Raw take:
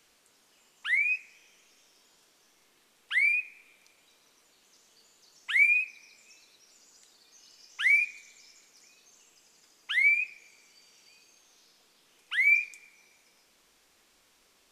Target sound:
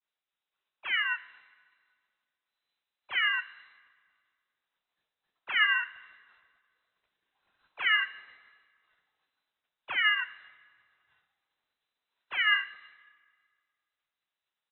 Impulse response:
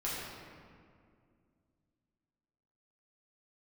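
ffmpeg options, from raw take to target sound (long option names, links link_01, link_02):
-filter_complex "[0:a]asplit=4[link_01][link_02][link_03][link_04];[link_02]asetrate=22050,aresample=44100,atempo=2,volume=-5dB[link_05];[link_03]asetrate=37084,aresample=44100,atempo=1.18921,volume=-4dB[link_06];[link_04]asetrate=52444,aresample=44100,atempo=0.840896,volume=-9dB[link_07];[link_01][link_05][link_06][link_07]amix=inputs=4:normalize=0,lowpass=frequency=3400:width_type=q:width=0.5098,lowpass=frequency=3400:width_type=q:width=0.6013,lowpass=frequency=3400:width_type=q:width=0.9,lowpass=frequency=3400:width_type=q:width=2.563,afreqshift=-4000,agate=range=-33dB:threshold=-52dB:ratio=3:detection=peak,asplit=2[link_08][link_09];[1:a]atrim=start_sample=2205,adelay=41[link_10];[link_09][link_10]afir=irnorm=-1:irlink=0,volume=-25.5dB[link_11];[link_08][link_11]amix=inputs=2:normalize=0,volume=-5dB"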